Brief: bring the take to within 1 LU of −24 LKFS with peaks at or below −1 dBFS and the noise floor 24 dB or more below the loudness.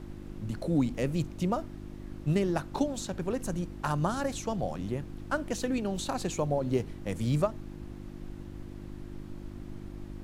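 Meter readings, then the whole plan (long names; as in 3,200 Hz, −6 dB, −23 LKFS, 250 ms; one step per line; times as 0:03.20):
mains hum 50 Hz; hum harmonics up to 350 Hz; level of the hum −41 dBFS; background noise floor −44 dBFS; target noise floor −56 dBFS; integrated loudness −32.0 LKFS; sample peak −14.0 dBFS; target loudness −24.0 LKFS
→ hum removal 50 Hz, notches 7
noise reduction from a noise print 12 dB
level +8 dB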